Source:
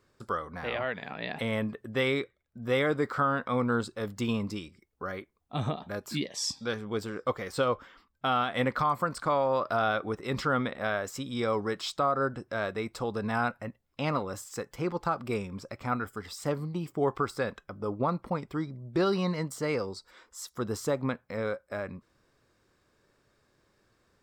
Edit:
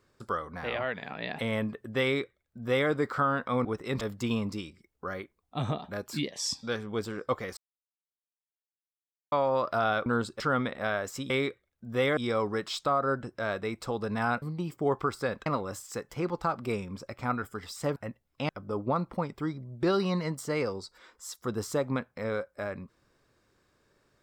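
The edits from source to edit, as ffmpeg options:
-filter_complex "[0:a]asplit=13[a][b][c][d][e][f][g][h][i][j][k][l][m];[a]atrim=end=3.652[n];[b]atrim=start=10.038:end=10.402[o];[c]atrim=start=3.988:end=7.55,asetpts=PTS-STARTPTS,afade=t=out:st=3.558:d=0.004:c=hsin[p];[d]atrim=start=7.55:end=9.3,asetpts=PTS-STARTPTS,volume=0[q];[e]atrim=start=9.3:end=10.042,asetpts=PTS-STARTPTS,afade=t=in:d=0.004:c=hsin[r];[f]atrim=start=3.648:end=3.992[s];[g]atrim=start=10.398:end=11.302[t];[h]atrim=start=2.028:end=2.902[u];[i]atrim=start=11.298:end=13.552[v];[j]atrim=start=16.578:end=17.622[w];[k]atrim=start=14.078:end=16.582[x];[l]atrim=start=13.548:end=14.082[y];[m]atrim=start=17.618[z];[n][o]acrossfade=d=0.004:c1=hsin:c2=hsin[aa];[p][q][r]concat=n=3:v=0:a=1[ab];[aa][ab]acrossfade=d=0.004:c1=hsin:c2=hsin[ac];[ac][s]acrossfade=d=0.004:c1=hsin:c2=hsin[ad];[ad][t]acrossfade=d=0.004:c1=hsin:c2=hsin[ae];[ae][u]acrossfade=d=0.004:c1=hsin:c2=hsin[af];[af][v]acrossfade=d=0.004:c1=hsin:c2=hsin[ag];[ag][w]acrossfade=d=0.004:c1=hsin:c2=hsin[ah];[ah][x]acrossfade=d=0.004:c1=hsin:c2=hsin[ai];[ai][y]acrossfade=d=0.004:c1=hsin:c2=hsin[aj];[aj][z]acrossfade=d=0.004:c1=hsin:c2=hsin"

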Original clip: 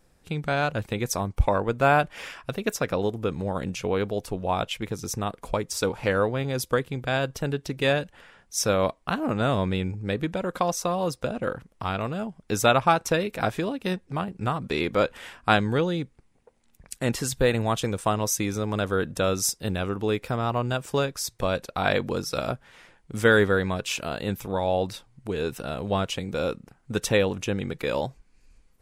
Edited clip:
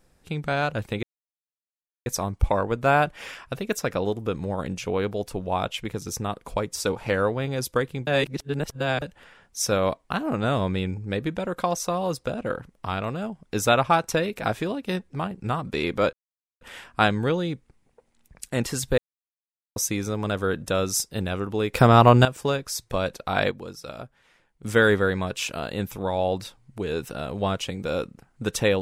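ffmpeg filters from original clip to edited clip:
-filter_complex "[0:a]asplit=11[a][b][c][d][e][f][g][h][i][j][k];[a]atrim=end=1.03,asetpts=PTS-STARTPTS,afade=t=out:st=1.026:d=0.004:c=hsin,apad=pad_dur=1.03[l];[b]atrim=start=1.03:end=7.042,asetpts=PTS-STARTPTS,afade=t=in:d=0.004:c=hsin[m];[c]atrim=start=7.038:end=7.992,asetpts=PTS-STARTPTS,areverse[n];[d]atrim=start=7.988:end=15.1,asetpts=PTS-STARTPTS,afade=t=out:st=7.108:d=0.004:c=hsin,apad=pad_dur=0.48[o];[e]atrim=start=15.1:end=17.47,asetpts=PTS-STARTPTS,afade=t=in:d=0.004:c=hsin,afade=t=out:st=2.366:d=0.004:c=hsin[p];[f]atrim=start=17.47:end=18.25,asetpts=PTS-STARTPTS,volume=0[q];[g]atrim=start=18.25:end=20.232,asetpts=PTS-STARTPTS,afade=t=in:d=0.004:c=hsin[r];[h]atrim=start=20.228:end=20.742,asetpts=PTS-STARTPTS,volume=12dB[s];[i]atrim=start=20.738:end=22.002[t];[j]atrim=start=21.998:end=23.122,asetpts=PTS-STARTPTS,volume=-9.5dB[u];[k]atrim=start=23.118[v];[l][m]concat=n=2:v=0:a=1[w];[w][n]acrossfade=d=0.004:c1=hsin:c2=hsin[x];[o][p][q][r]concat=n=4:v=0:a=1[y];[x][y]acrossfade=d=0.004:c1=hsin:c2=hsin[z];[z][s]acrossfade=d=0.004:c1=hsin:c2=hsin[aa];[aa][t]acrossfade=d=0.004:c1=hsin:c2=hsin[ab];[ab][u]acrossfade=d=0.004:c1=hsin:c2=hsin[ac];[ac][v]acrossfade=d=0.004:c1=hsin:c2=hsin"

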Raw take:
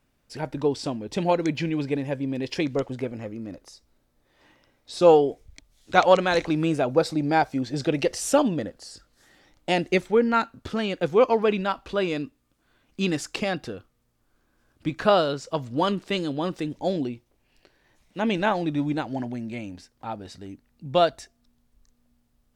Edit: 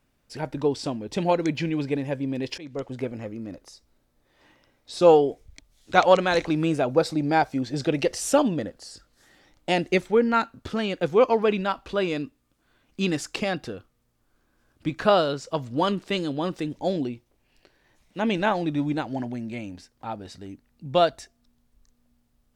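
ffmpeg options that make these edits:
-filter_complex "[0:a]asplit=2[a][b];[a]atrim=end=2.58,asetpts=PTS-STARTPTS,afade=t=out:st=2.576:d=0.004:c=hsin:silence=0.0794328[c];[b]atrim=start=2.58,asetpts=PTS-STARTPTS,afade=t=in:d=0.45:silence=0.0794328[d];[c][d]concat=n=2:v=0:a=1"

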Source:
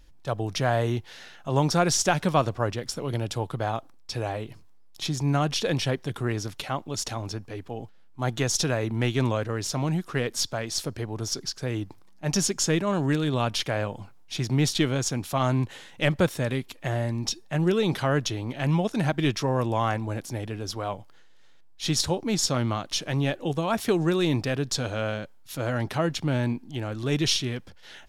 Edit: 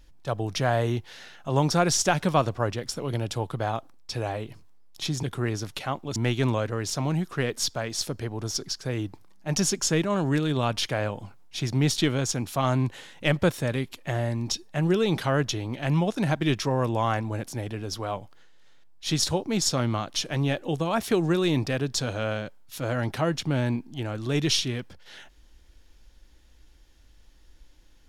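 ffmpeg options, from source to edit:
-filter_complex "[0:a]asplit=3[a][b][c];[a]atrim=end=5.232[d];[b]atrim=start=6.058:end=6.992[e];[c]atrim=start=8.928[f];[d][e]acrossfade=d=0.004:c1=hsin:c2=hsin[g];[g][f]acrossfade=d=0.004:c1=hsin:c2=hsin"

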